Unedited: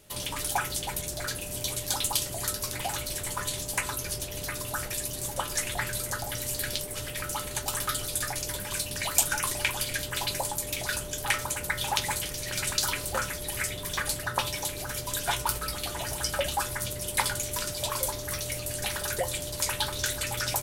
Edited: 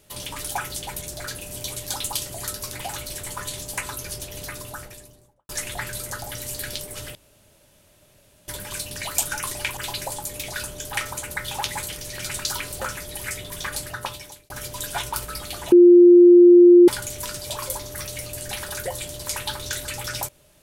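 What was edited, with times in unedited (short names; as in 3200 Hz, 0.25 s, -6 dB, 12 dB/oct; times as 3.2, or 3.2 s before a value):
4.42–5.49 studio fade out
7.15–8.48 room tone
9.77–10.1 cut
14.21–14.83 fade out
16.05–17.21 bleep 351 Hz -6.5 dBFS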